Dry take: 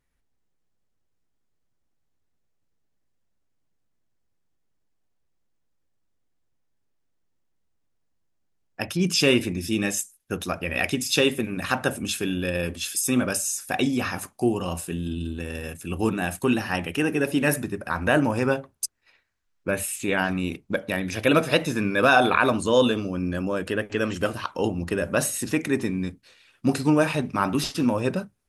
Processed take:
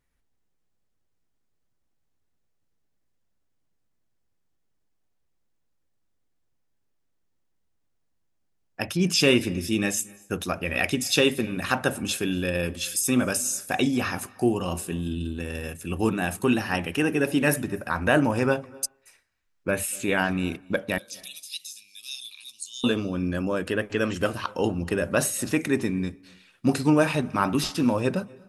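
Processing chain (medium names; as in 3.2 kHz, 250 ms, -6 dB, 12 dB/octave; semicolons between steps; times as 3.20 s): 20.98–22.84 s: inverse Chebyshev high-pass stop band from 1.6 kHz, stop band 50 dB; on a send: reverberation RT60 0.55 s, pre-delay 225 ms, DRR 24 dB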